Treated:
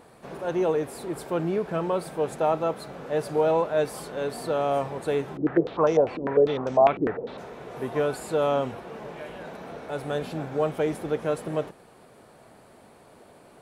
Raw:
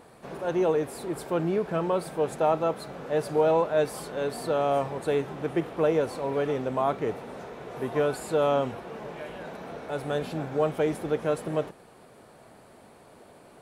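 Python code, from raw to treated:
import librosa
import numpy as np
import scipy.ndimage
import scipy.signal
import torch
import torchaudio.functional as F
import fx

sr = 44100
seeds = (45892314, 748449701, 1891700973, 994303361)

y = fx.filter_held_lowpass(x, sr, hz=10.0, low_hz=310.0, high_hz=5900.0, at=(5.37, 7.38))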